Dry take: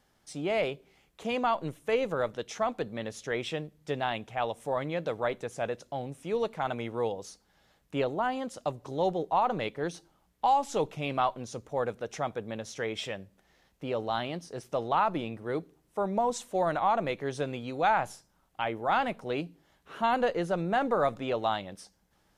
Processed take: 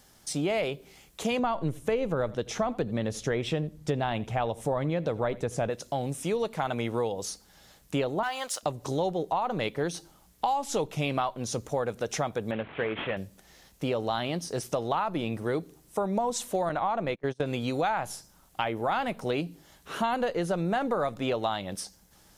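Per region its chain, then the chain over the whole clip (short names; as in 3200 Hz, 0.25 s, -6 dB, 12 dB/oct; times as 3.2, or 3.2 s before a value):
1.39–5.7 tilt -2 dB/oct + echo 84 ms -23 dB
8.23–8.63 HPF 1000 Hz + sample leveller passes 1
12.51–13.17 CVSD 16 kbps + low shelf 87 Hz -11 dB
16.69–17.46 gate -35 dBFS, range -29 dB + high shelf 4800 Hz -10 dB
whole clip: dynamic EQ 7300 Hz, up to -6 dB, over -54 dBFS, Q 0.84; compressor 4:1, threshold -34 dBFS; tone controls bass +2 dB, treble +10 dB; gain +7.5 dB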